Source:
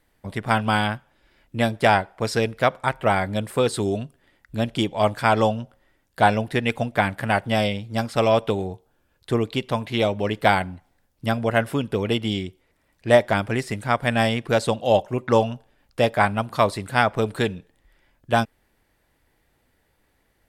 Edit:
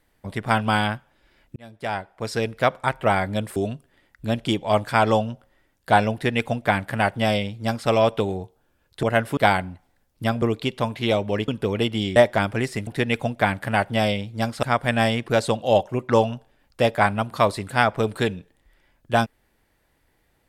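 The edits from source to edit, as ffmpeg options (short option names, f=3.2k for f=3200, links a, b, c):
-filter_complex "[0:a]asplit=10[a][b][c][d][e][f][g][h][i][j];[a]atrim=end=1.56,asetpts=PTS-STARTPTS,afade=t=out:st=1.556:d=0.004:c=hsin[k];[b]atrim=start=1.56:end=3.562,asetpts=PTS-STARTPTS,afade=t=in:d=1.14[l];[c]atrim=start=3.858:end=9.332[m];[d]atrim=start=11.438:end=11.782[n];[e]atrim=start=10.388:end=11.442[o];[f]atrim=start=9.328:end=10.392[p];[g]atrim=start=11.778:end=12.462[q];[h]atrim=start=13.108:end=13.822[r];[i]atrim=start=6.428:end=8.192[s];[j]atrim=start=13.818[t];[k][l]concat=n=2:v=0:a=1[u];[u][m]acrossfade=d=0.004:c1=hsin:c2=hsin[v];[v][n]acrossfade=d=0.004:c1=hsin:c2=hsin[w];[w][o]acrossfade=d=0.004:c1=hsin:c2=hsin[x];[x][p]acrossfade=d=0.004:c1=hsin:c2=hsin[y];[y][q]acrossfade=d=0.004:c1=hsin:c2=hsin[z];[z][r]acrossfade=d=0.004:c1=hsin:c2=hsin[aa];[aa][s]acrossfade=d=0.004:c1=hsin:c2=hsin[ab];[ab][t]acrossfade=d=0.004:c1=hsin:c2=hsin"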